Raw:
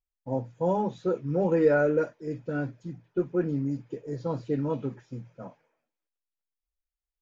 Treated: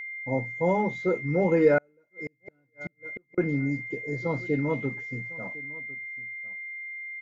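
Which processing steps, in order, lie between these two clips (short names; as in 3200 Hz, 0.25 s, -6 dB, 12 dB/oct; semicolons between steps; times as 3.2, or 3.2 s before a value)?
whine 2100 Hz -36 dBFS; echo 1.054 s -21 dB; 1.78–3.38 flipped gate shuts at -26 dBFS, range -40 dB; gain +1.5 dB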